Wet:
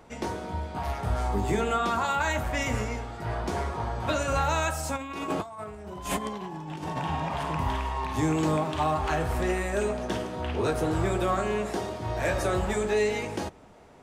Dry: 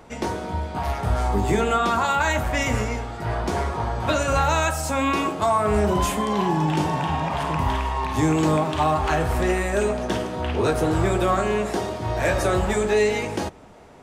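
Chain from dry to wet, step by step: 4.96–7.05 negative-ratio compressor -27 dBFS, ratio -0.5; gain -5.5 dB

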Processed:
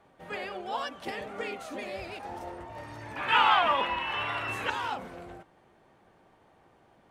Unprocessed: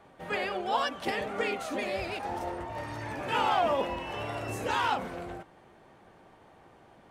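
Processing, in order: 3.16–4.7 band shelf 1900 Hz +13.5 dB 2.4 oct; gain -5 dB

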